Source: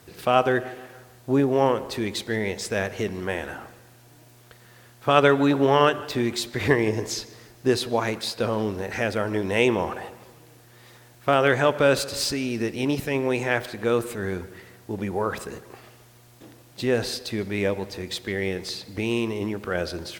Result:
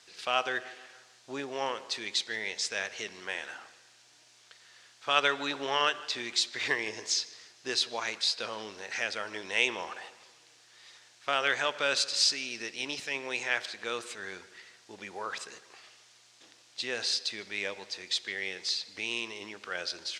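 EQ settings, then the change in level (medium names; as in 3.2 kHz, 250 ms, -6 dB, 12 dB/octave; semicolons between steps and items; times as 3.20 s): band-pass filter 6.3 kHz, Q 0.98; distance through air 97 m; +8.0 dB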